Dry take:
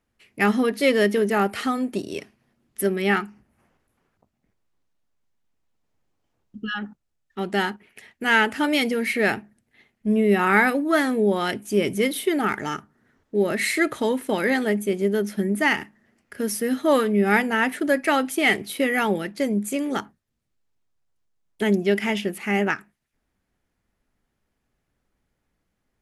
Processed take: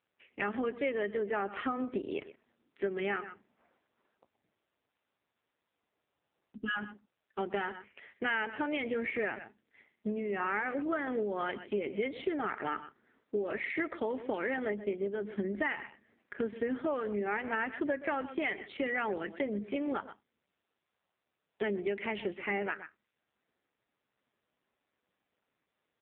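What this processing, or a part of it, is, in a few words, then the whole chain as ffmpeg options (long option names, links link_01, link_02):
voicemail: -af "highpass=310,lowpass=2900,aecho=1:1:124:0.133,acompressor=threshold=-29dB:ratio=8" -ar 8000 -c:a libopencore_amrnb -b:a 5900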